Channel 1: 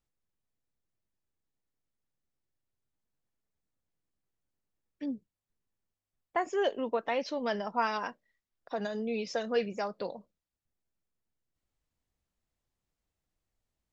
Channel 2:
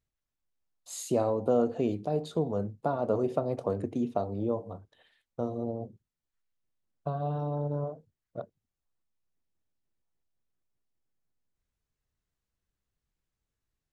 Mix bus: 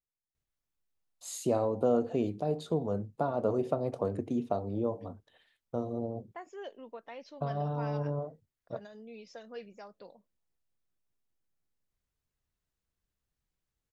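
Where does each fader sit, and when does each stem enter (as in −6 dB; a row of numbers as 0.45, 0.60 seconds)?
−14.5, −1.5 decibels; 0.00, 0.35 seconds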